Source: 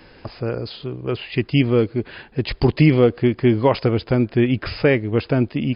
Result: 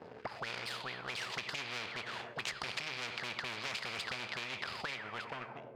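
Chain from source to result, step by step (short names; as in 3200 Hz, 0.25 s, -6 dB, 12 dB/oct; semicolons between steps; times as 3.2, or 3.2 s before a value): ending faded out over 1.69 s; sample leveller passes 3; low shelf 190 Hz +7.5 dB; tube stage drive 8 dB, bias 0.75; HPF 100 Hz 12 dB/oct; bell 310 Hz -13 dB 0.52 oct; on a send at -10 dB: reverb RT60 1.2 s, pre-delay 4 ms; on the sum: auto-wah 420–2400 Hz, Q 21, up, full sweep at -13.5 dBFS; compressor, threshold -41 dBFS, peak gain reduction 11 dB; spectral compressor 4:1; gain +8 dB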